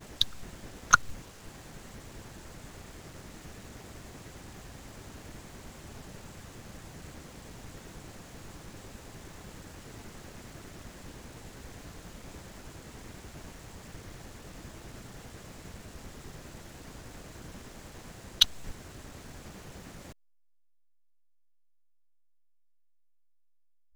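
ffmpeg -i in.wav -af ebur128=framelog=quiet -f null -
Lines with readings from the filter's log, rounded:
Integrated loudness:
  I:         -38.2 LUFS
  Threshold: -48.3 LUFS
Loudness range:
  LRA:        13.7 LU
  Threshold: -60.1 LUFS
  LRA low:   -47.6 LUFS
  LRA high:  -33.9 LUFS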